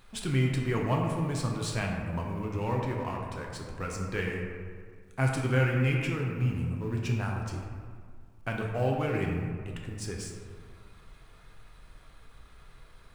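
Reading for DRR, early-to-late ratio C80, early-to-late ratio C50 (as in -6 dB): -1.0 dB, 3.5 dB, 2.0 dB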